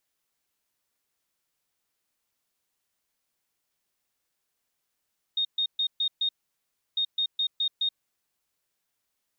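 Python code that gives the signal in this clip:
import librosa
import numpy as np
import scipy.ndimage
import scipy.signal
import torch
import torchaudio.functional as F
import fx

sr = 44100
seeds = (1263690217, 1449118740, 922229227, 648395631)

y = fx.beep_pattern(sr, wave='sine', hz=3700.0, on_s=0.08, off_s=0.13, beeps=5, pause_s=0.68, groups=2, level_db=-23.0)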